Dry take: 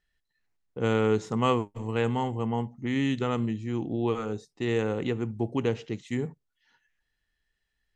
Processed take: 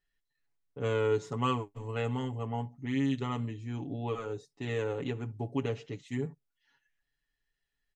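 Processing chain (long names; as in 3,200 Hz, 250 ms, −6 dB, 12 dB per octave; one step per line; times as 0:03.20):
comb filter 7.1 ms, depth 85%
level −7.5 dB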